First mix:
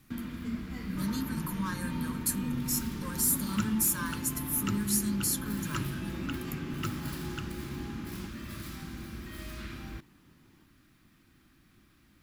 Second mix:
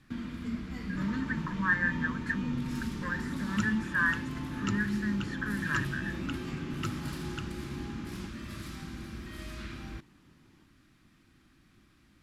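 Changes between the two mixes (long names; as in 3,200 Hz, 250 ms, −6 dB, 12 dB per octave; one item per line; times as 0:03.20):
speech: add low-pass with resonance 1,800 Hz, resonance Q 13
master: add low-pass filter 9,300 Hz 12 dB per octave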